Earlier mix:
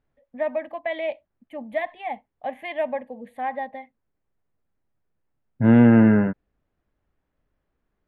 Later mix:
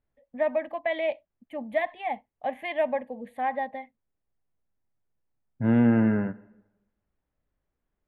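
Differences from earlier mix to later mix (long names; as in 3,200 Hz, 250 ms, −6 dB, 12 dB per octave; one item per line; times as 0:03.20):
second voice −8.0 dB
reverb: on, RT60 1.0 s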